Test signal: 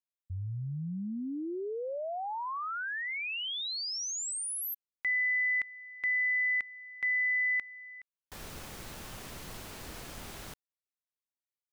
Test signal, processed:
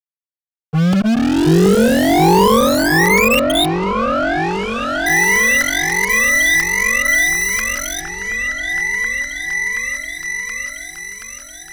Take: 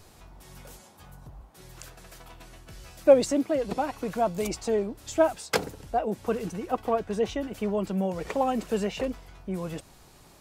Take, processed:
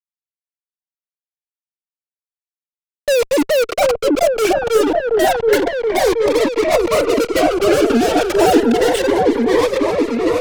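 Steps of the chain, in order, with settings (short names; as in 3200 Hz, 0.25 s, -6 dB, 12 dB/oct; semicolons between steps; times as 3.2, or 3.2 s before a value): sine-wave speech; auto swell 0.118 s; fuzz box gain 48 dB, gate -42 dBFS; on a send: repeats that get brighter 0.726 s, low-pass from 750 Hz, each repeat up 1 oct, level 0 dB; on the sum: cascading phaser rising 0.29 Hz; gain +2 dB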